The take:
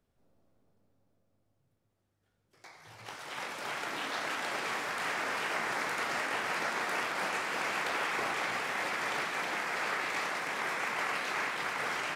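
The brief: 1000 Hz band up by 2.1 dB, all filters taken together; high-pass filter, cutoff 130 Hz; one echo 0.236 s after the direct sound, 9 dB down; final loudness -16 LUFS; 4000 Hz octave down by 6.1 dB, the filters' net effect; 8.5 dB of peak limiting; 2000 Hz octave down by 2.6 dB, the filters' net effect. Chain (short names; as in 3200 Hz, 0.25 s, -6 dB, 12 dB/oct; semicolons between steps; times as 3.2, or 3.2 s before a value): HPF 130 Hz; bell 1000 Hz +4 dB; bell 2000 Hz -3 dB; bell 4000 Hz -7.5 dB; limiter -27.5 dBFS; echo 0.236 s -9 dB; gain +20 dB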